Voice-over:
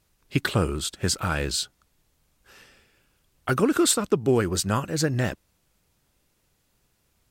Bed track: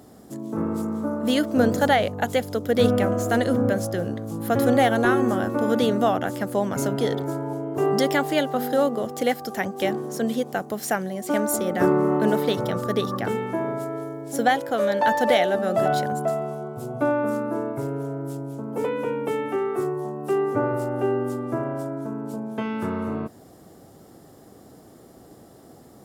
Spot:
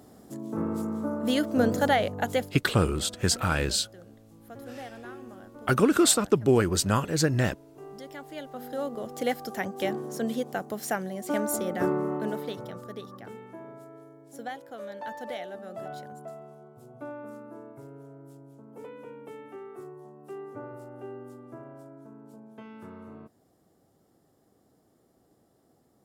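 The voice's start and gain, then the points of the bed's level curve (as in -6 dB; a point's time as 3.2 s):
2.20 s, 0.0 dB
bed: 2.42 s -4 dB
2.64 s -23 dB
7.97 s -23 dB
9.29 s -5 dB
11.62 s -5 dB
13.1 s -17.5 dB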